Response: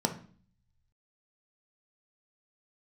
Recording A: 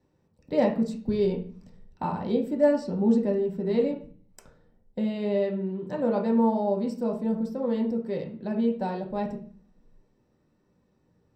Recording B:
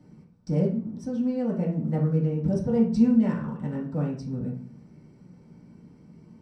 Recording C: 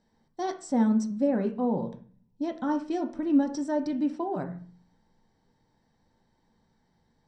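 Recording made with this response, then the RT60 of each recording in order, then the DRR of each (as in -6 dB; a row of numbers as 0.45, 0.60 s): C; 0.45, 0.45, 0.45 s; -1.0, -6.0, 4.0 dB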